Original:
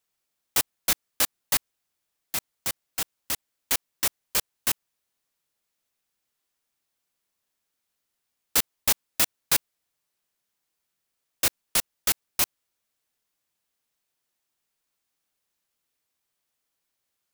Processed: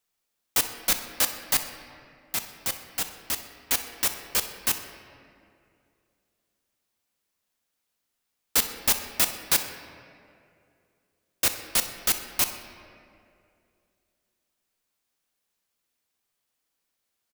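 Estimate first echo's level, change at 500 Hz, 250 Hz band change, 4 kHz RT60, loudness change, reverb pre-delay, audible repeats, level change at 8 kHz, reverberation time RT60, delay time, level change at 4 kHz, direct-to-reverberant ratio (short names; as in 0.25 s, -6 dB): -16.5 dB, +1.0 dB, +1.0 dB, 1.4 s, +0.5 dB, 4 ms, 1, +0.5 dB, 2.5 s, 63 ms, +0.5 dB, 6.5 dB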